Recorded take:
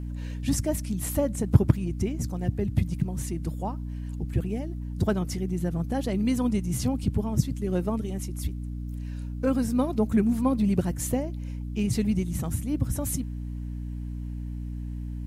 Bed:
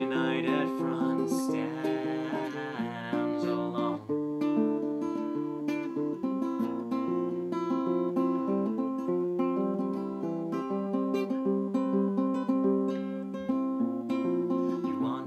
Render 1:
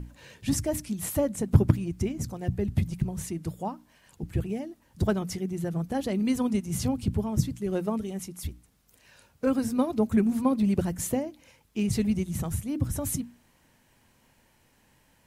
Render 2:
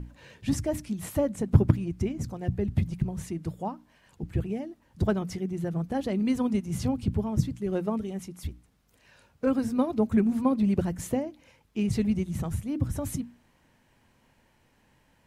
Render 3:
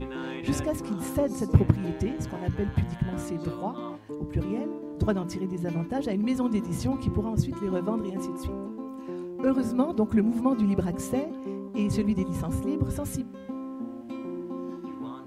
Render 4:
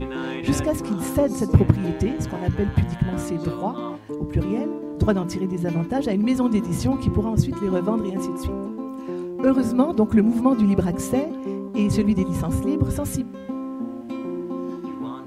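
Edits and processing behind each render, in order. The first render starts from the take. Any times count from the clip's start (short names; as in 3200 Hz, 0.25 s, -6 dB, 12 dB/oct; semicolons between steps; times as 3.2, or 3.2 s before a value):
notches 60/120/180/240/300 Hz
high shelf 5500 Hz -10 dB
add bed -6.5 dB
gain +6 dB; limiter -2 dBFS, peak gain reduction 3 dB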